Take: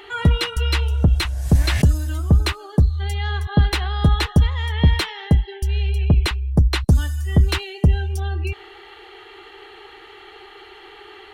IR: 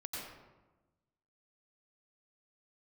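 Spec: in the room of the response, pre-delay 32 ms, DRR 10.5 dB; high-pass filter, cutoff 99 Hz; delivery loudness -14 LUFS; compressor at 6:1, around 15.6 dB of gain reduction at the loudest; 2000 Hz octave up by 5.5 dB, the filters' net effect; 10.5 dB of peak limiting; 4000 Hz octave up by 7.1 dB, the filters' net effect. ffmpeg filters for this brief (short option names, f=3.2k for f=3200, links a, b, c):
-filter_complex "[0:a]highpass=99,equalizer=f=2k:t=o:g=5,equalizer=f=4k:t=o:g=7,acompressor=threshold=-29dB:ratio=6,alimiter=level_in=2dB:limit=-24dB:level=0:latency=1,volume=-2dB,asplit=2[a][b];[1:a]atrim=start_sample=2205,adelay=32[c];[b][c]afir=irnorm=-1:irlink=0,volume=-11dB[d];[a][d]amix=inputs=2:normalize=0,volume=21.5dB"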